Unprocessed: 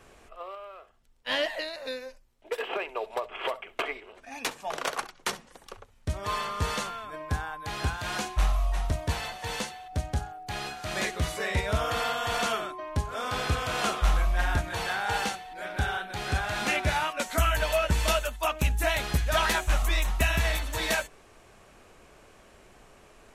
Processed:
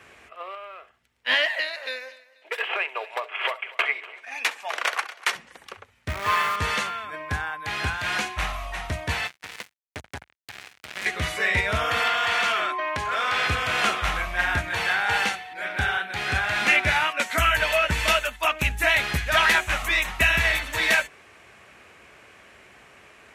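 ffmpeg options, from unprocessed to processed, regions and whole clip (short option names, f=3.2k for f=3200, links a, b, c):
-filter_complex "[0:a]asettb=1/sr,asplit=3[a][b][c];[a]atrim=end=1.344[d];[b]atrim=start=1.34:end=5.35,asetpts=PTS-STARTPTS,afade=t=in:d=0.004:c=qsin,afade=t=out:st=4.006:d=0.004:c=qsin,highpass=520,aecho=1:1:243|486|729:0.106|0.0339|0.0108,atrim=end_sample=176841[e];[c]atrim=start=5.346[f];[d][e]acrossfade=d=0.004:c1=hsin:c2=qsin[g];[g][f]acrossfade=d=0.004:c1=qsin:c2=hsin,asettb=1/sr,asplit=3[h][i][j];[h]atrim=end=6.084[k];[i]atrim=start=6.08:end=6.56,asetpts=PTS-STARTPTS,afade=t=in:d=0.004:c=qsin,afade=t=out:st=0.476:d=0.004:c=qsin,equalizer=f=1.3k:t=o:w=1.5:g=5,adynamicsmooth=sensitivity=7.5:basefreq=2.4k,acrusher=bits=7:dc=4:mix=0:aa=0.000001[l];[j]atrim=start=6.556[m];[k][l]acrossfade=d=0.004:c1=hsin:c2=qsin[n];[n][m]acrossfade=d=0.004:c1=qsin:c2=hsin,asettb=1/sr,asplit=3[o][p][q];[o]atrim=end=9.274[r];[p]atrim=start=9.27:end=11.06,asetpts=PTS-STARTPTS,afade=t=in:d=0.004:c=qsin,afade=t=out:st=1.786:d=0.004:c=qsin,bandreject=f=264.5:t=h:w=4,bandreject=f=529:t=h:w=4,bandreject=f=793.5:t=h:w=4,bandreject=f=1.058k:t=h:w=4,bandreject=f=1.3225k:t=h:w=4,bandreject=f=1.587k:t=h:w=4,bandreject=f=1.8515k:t=h:w=4,bandreject=f=2.116k:t=h:w=4,bandreject=f=2.3805k:t=h:w=4,bandreject=f=2.645k:t=h:w=4,bandreject=f=2.9095k:t=h:w=4,bandreject=f=3.174k:t=h:w=4,bandreject=f=3.4385k:t=h:w=4,bandreject=f=3.703k:t=h:w=4,bandreject=f=3.9675k:t=h:w=4,bandreject=f=4.232k:t=h:w=4,bandreject=f=4.4965k:t=h:w=4,bandreject=f=4.761k:t=h:w=4,bandreject=f=5.0255k:t=h:w=4,bandreject=f=5.29k:t=h:w=4,bandreject=f=5.5545k:t=h:w=4,bandreject=f=5.819k:t=h:w=4,bandreject=f=6.0835k:t=h:w=4,bandreject=f=6.348k:t=h:w=4,bandreject=f=6.6125k:t=h:w=4,bandreject=f=6.877k:t=h:w=4,bandreject=f=7.1415k:t=h:w=4,bandreject=f=7.406k:t=h:w=4,bandreject=f=7.6705k:t=h:w=4,bandreject=f=7.935k:t=h:w=4,bandreject=f=8.1995k:t=h:w=4,bandreject=f=8.464k:t=h:w=4,bandreject=f=8.7285k:t=h:w=4,bandreject=f=8.993k:t=h:w=4,bandreject=f=9.2575k:t=h:w=4,bandreject=f=9.522k:t=h:w=4,bandreject=f=9.7865k:t=h:w=4,bandreject=f=10.051k:t=h:w=4,bandreject=f=10.3155k:t=h:w=4,acompressor=threshold=-36dB:ratio=2.5:attack=3.2:release=140:knee=1:detection=peak,acrusher=bits=4:mix=0:aa=0.5[s];[q]atrim=start=11.056[t];[r][s]acrossfade=d=0.004:c1=hsin:c2=qsin[u];[u][t]acrossfade=d=0.004:c1=qsin:c2=hsin,asettb=1/sr,asplit=3[v][w][x];[v]atrim=end=12.074[y];[w]atrim=start=12.07:end=13.47,asetpts=PTS-STARTPTS,afade=t=in:d=0.004:c=qsin,afade=t=out:st=1.396:d=0.004:c=qsin,asplit=2[z][aa];[aa]highpass=f=720:p=1,volume=15dB,asoftclip=type=tanh:threshold=-15dB[ab];[z][ab]amix=inputs=2:normalize=0,lowpass=f=5k:p=1,volume=-6dB,acompressor=threshold=-27dB:ratio=4:attack=3.2:release=140:knee=1:detection=peak[ac];[x]atrim=start=13.466[ad];[y][ac]acrossfade=d=0.004:c1=hsin:c2=qsin[ae];[ae][ad]acrossfade=d=0.004:c1=qsin:c2=hsin,highpass=f=61:w=0.5412,highpass=f=61:w=1.3066,equalizer=f=2.1k:t=o:w=1.4:g=11.5"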